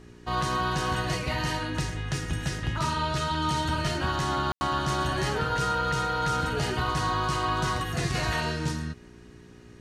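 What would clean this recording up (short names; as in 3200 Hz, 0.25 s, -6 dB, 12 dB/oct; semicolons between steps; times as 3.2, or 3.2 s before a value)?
de-hum 59.7 Hz, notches 7; room tone fill 4.52–4.61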